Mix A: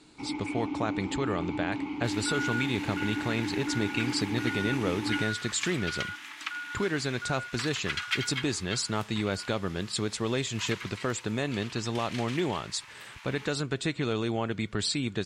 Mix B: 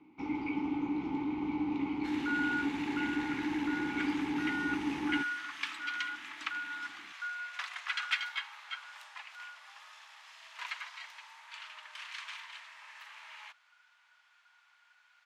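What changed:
speech: muted; master: add low-pass 2.9 kHz 6 dB/octave

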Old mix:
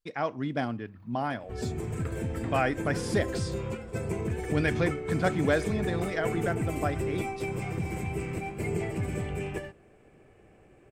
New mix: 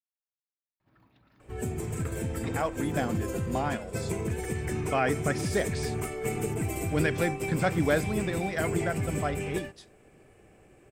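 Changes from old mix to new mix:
speech: entry +2.40 s; second sound: add treble shelf 5.5 kHz +11 dB

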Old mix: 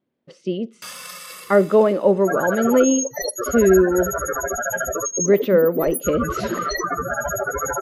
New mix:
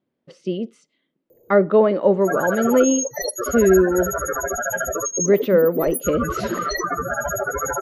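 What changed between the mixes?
speech: send off; first sound: muted

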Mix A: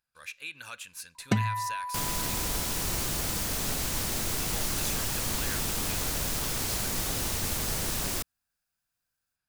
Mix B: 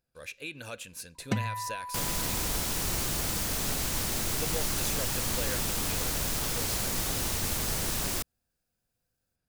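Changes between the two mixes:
speech: add resonant low shelf 750 Hz +11 dB, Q 1.5; first sound -4.0 dB

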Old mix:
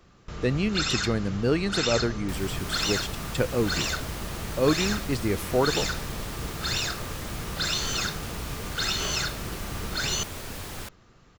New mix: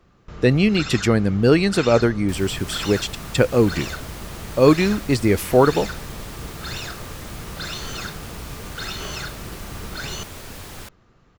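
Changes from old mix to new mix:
speech +9.0 dB; first sound: add treble shelf 3.4 kHz -8.5 dB

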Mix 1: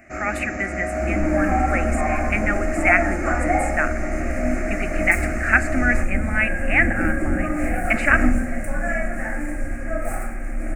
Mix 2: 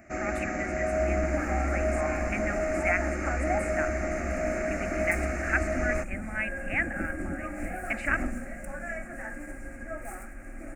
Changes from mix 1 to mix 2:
speech -10.5 dB; second sound -3.5 dB; reverb: off

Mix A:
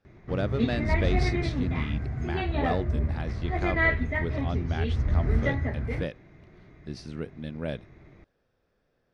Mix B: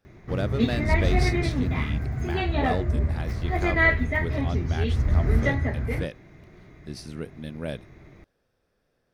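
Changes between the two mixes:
background +3.0 dB; master: remove distance through air 92 m

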